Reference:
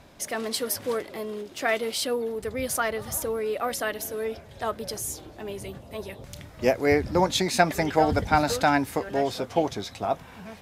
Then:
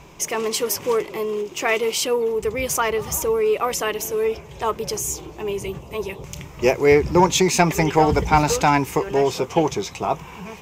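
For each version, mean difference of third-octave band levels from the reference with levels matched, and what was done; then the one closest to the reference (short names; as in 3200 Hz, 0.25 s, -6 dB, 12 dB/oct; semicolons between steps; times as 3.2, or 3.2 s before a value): 2.5 dB: ripple EQ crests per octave 0.74, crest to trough 10 dB; in parallel at -4.5 dB: soft clip -17.5 dBFS, distortion -12 dB; on the sum: gain +2 dB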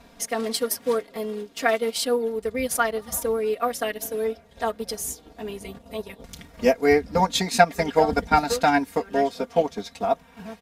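4.0 dB: comb 4.3 ms, depth 96%; transient shaper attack +1 dB, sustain -8 dB; gain -1 dB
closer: first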